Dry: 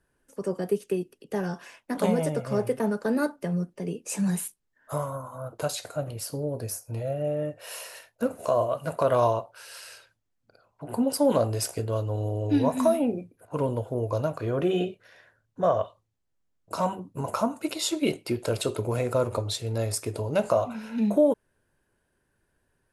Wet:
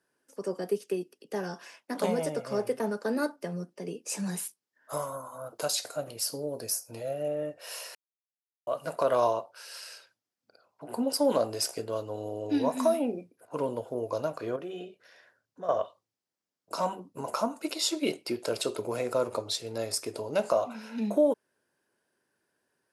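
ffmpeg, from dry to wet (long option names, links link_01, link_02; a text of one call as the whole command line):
ffmpeg -i in.wav -filter_complex "[0:a]asettb=1/sr,asplit=3[link_01][link_02][link_03];[link_01]atrim=end=4.934[link_04];[link_02]atrim=start=4.93:end=7.28,asetpts=PTS-STARTPTS,afade=type=in:duration=0.004:curve=qsin,afade=type=out:start_time=2.346:duration=0.004:curve=qsin,highshelf=frequency=3800:gain=6.5[link_05];[link_03]atrim=start=7.276[link_06];[link_04][link_05]acrossfade=duration=0.004:curve1=hsin:curve2=qsin[link_07];[link_07][link_06]acrossfade=duration=0.004:curve1=qsin:curve2=hsin,asettb=1/sr,asplit=3[link_08][link_09][link_10];[link_08]atrim=end=14.564[link_11];[link_09]atrim=start=14.56:end=15.69,asetpts=PTS-STARTPTS,afade=type=in:duration=0.004:curve=qsin,afade=type=out:start_time=1.126:duration=0.004:curve=qsin,acompressor=threshold=-51dB:ratio=1.5:attack=3.2:release=140:knee=1:detection=peak[link_12];[link_10]atrim=start=15.686[link_13];[link_11][link_12]acrossfade=duration=0.004:curve1=hsin:curve2=qsin[link_14];[link_14][link_13]acrossfade=duration=0.004:curve1=qsin:curve2=hsin,asplit=3[link_15][link_16][link_17];[link_15]atrim=end=7.95,asetpts=PTS-STARTPTS,afade=type=out:start_time=7.946:duration=0.004:curve=hsin[link_18];[link_16]atrim=start=7.95:end=8.67,asetpts=PTS-STARTPTS,volume=0[link_19];[link_17]atrim=start=8.67,asetpts=PTS-STARTPTS,afade=type=in:duration=0.004:curve=hsin[link_20];[link_18][link_19][link_20]concat=n=3:v=0:a=1,highpass=240,equalizer=frequency=5100:width=2.7:gain=6.5,volume=-2.5dB" out.wav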